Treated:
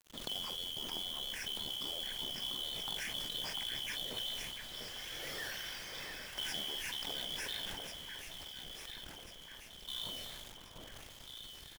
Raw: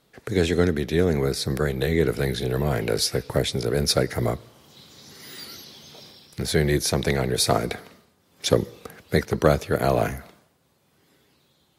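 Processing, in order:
band-splitting scrambler in four parts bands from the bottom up 2413
high-pass filter 94 Hz 12 dB per octave
high-shelf EQ 4,800 Hz −10.5 dB
brickwall limiter −17.5 dBFS, peak gain reduction 11.5 dB
downward compressor 6 to 1, threshold −42 dBFS, peak gain reduction 17 dB
0:07.65–0:09.88: gate with flip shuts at −43 dBFS, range −26 dB
background noise brown −62 dBFS
log-companded quantiser 4 bits
double-tracking delay 44 ms −11.5 dB
delay that swaps between a low-pass and a high-pass 695 ms, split 2,100 Hz, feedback 71%, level −5 dB
level that may fall only so fast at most 21 dB per second
level +1 dB

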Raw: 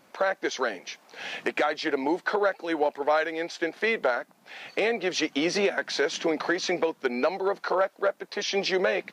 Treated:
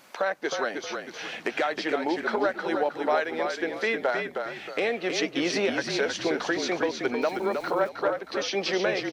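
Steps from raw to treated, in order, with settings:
echo with shifted repeats 314 ms, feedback 35%, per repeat −39 Hz, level −5.5 dB
0:07.22–0:07.89: centre clipping without the shift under −43 dBFS
one half of a high-frequency compander encoder only
level −1.5 dB

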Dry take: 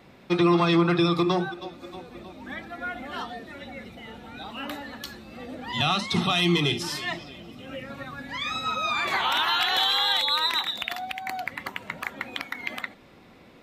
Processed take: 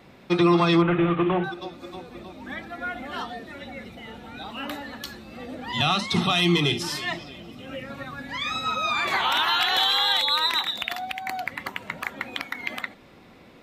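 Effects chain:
0:00.82–0:01.44: variable-slope delta modulation 16 kbit/s
level +1.5 dB

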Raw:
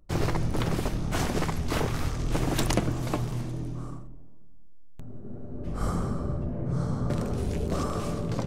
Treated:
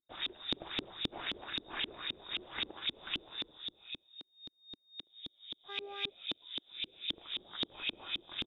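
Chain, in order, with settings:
brickwall limiter −21.5 dBFS, peak gain reduction 11 dB
mains-hum notches 50/100 Hz
voice inversion scrambler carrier 3,700 Hz
parametric band 340 Hz +8 dB 0.36 octaves
on a send: ambience of single reflections 36 ms −16 dB, 75 ms −12 dB
0:05.68–0:06.08: on the sum: hum with harmonics 400 Hz, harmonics 19, −43 dBFS −4 dB per octave
auto-filter low-pass saw up 3.8 Hz 280–2,900 Hz
level −5 dB

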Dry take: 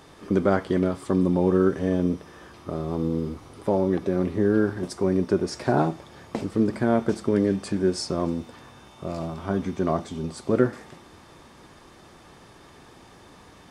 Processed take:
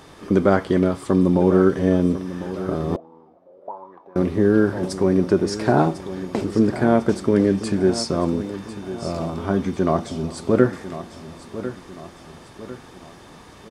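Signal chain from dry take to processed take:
repeating echo 1,049 ms, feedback 45%, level −13 dB
0:02.96–0:04.16: envelope filter 480–1,000 Hz, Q 11, up, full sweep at −19 dBFS
level +4.5 dB

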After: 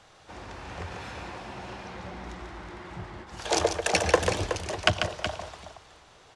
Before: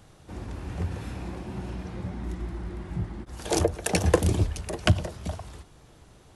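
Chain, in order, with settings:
three-way crossover with the lows and the highs turned down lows −15 dB, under 510 Hz, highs −24 dB, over 7,600 Hz
multi-tap delay 142/371 ms −7/−9.5 dB
level +4.5 dB

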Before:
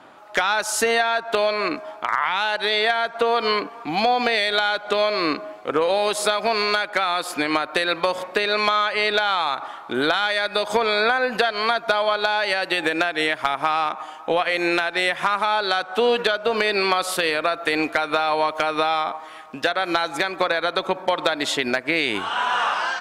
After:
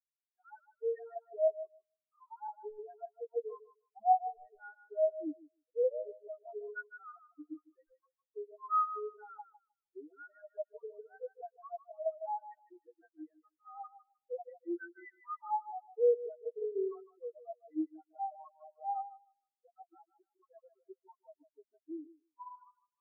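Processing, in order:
stylus tracing distortion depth 0.16 ms
high-shelf EQ 4,100 Hz −6 dB
notch filter 550 Hz, Q 12
hum removal 115.9 Hz, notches 6
output level in coarse steps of 23 dB
spectral peaks only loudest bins 2
feedback echo with a high-pass in the loop 154 ms, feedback 63%, high-pass 230 Hz, level −3 dB
every bin expanded away from the loudest bin 4 to 1

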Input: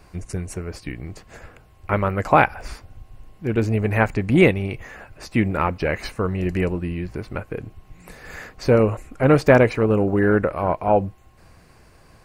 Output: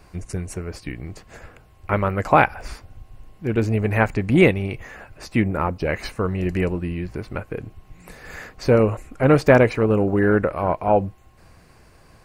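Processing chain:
0:05.41–0:05.87: parametric band 5,000 Hz → 1,600 Hz −9 dB 1.6 octaves

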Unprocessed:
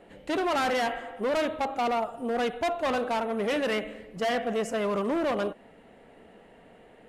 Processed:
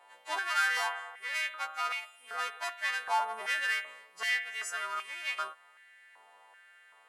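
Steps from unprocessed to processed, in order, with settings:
every partial snapped to a pitch grid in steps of 2 semitones
high-pass on a step sequencer 2.6 Hz 950–2,300 Hz
level −7.5 dB

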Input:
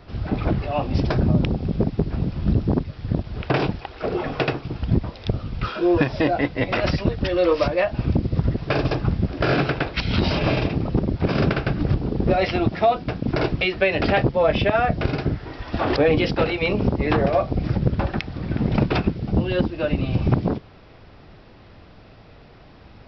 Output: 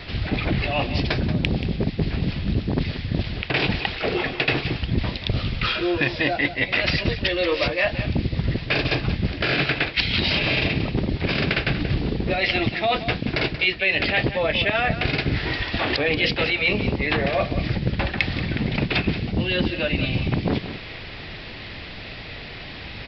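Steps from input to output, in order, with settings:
flat-topped bell 2,900 Hz +12.5 dB
reversed playback
downward compressor 5 to 1, threshold −28 dBFS, peak gain reduction 19 dB
reversed playback
single-tap delay 181 ms −12 dB
level +7.5 dB

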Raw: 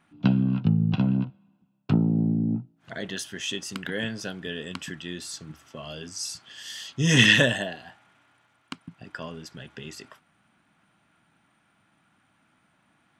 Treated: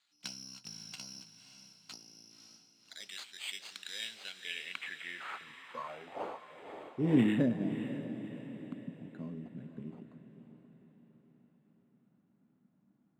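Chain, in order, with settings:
0:01.20–0:03.00: harmonic and percussive parts rebalanced harmonic −17 dB
0:05.46–0:05.88: EQ curve with evenly spaced ripples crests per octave 1, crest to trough 17 dB
decimation without filtering 8×
band-pass filter sweep 4,700 Hz → 210 Hz, 0:03.91–0:07.62
feedback delay with all-pass diffusion 552 ms, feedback 49%, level −10 dB
level +1 dB

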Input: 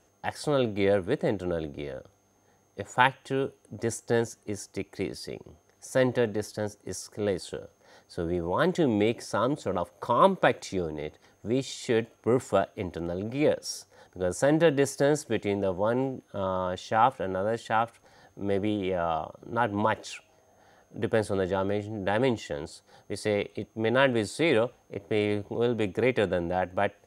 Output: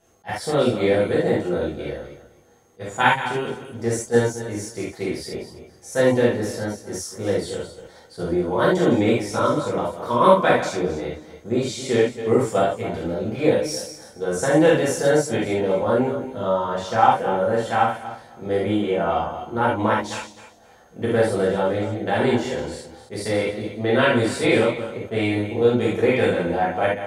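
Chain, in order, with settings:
feedback delay that plays each chunk backwards 130 ms, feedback 44%, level −10 dB
reverb whose tail is shaped and stops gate 100 ms flat, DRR −7.5 dB
level that may rise only so fast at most 450 dB per second
level −2 dB

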